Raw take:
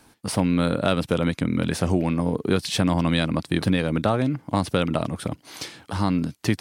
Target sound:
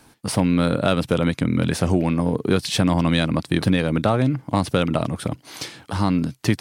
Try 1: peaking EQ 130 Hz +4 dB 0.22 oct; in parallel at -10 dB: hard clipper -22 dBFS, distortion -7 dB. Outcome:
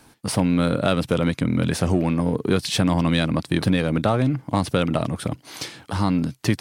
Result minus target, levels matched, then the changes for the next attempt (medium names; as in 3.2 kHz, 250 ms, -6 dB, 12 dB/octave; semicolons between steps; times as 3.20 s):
hard clipper: distortion +13 dB
change: hard clipper -12 dBFS, distortion -20 dB